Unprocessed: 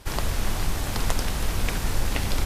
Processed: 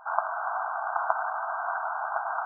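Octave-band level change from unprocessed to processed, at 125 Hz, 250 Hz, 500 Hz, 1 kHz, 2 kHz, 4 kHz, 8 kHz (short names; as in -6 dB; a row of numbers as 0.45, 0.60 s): under -40 dB, under -40 dB, 0.0 dB, +8.5 dB, +1.5 dB, under -40 dB, under -40 dB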